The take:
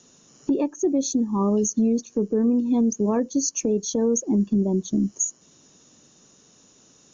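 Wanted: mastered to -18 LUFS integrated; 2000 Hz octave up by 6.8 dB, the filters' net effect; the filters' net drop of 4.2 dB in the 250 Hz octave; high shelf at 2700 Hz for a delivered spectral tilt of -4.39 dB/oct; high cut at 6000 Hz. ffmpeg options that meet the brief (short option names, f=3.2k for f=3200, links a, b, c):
-af "lowpass=6k,equalizer=f=250:t=o:g=-5,equalizer=f=2k:t=o:g=7.5,highshelf=f=2.7k:g=3.5,volume=7.5dB"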